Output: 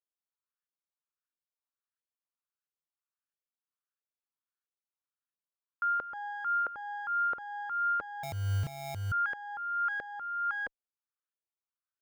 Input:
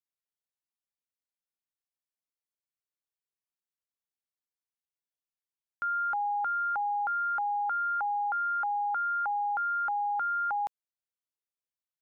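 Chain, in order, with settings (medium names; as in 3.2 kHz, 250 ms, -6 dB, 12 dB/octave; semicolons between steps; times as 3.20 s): comb filter that takes the minimum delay 0.7 ms; peak limiter -30 dBFS, peak gain reduction 7 dB; LFO band-pass saw up 1.5 Hz 510–1700 Hz; 8.23–9.12 s: sample-rate reducer 1.5 kHz, jitter 0%; trim +5 dB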